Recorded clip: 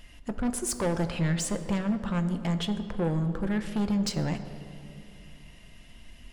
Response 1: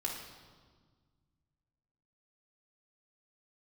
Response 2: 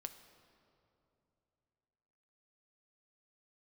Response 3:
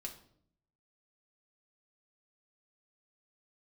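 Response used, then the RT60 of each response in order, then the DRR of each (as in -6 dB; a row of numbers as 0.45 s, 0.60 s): 2; 1.6 s, 2.9 s, 0.65 s; -3.0 dB, 7.5 dB, 0.0 dB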